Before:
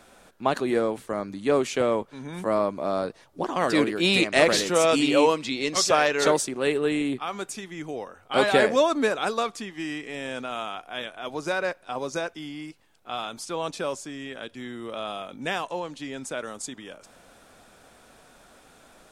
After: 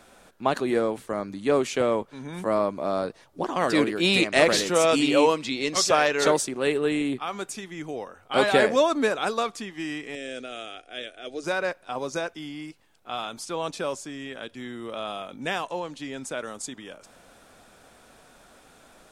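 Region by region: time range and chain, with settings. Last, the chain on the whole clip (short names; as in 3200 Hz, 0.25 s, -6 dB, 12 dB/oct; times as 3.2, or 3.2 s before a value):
10.15–11.44 brick-wall FIR low-pass 9900 Hz + fixed phaser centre 400 Hz, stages 4
whole clip: dry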